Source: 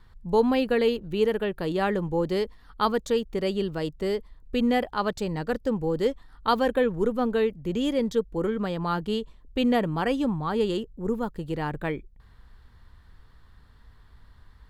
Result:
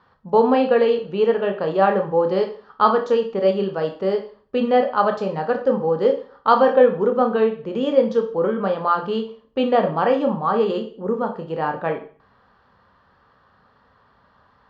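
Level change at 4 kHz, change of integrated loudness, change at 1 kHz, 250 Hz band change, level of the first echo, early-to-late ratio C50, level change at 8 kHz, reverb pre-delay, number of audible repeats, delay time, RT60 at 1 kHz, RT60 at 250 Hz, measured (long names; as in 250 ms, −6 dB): 0.0 dB, +7.0 dB, +9.5 dB, +2.0 dB, no echo audible, 10.0 dB, can't be measured, 18 ms, no echo audible, no echo audible, 0.40 s, 0.45 s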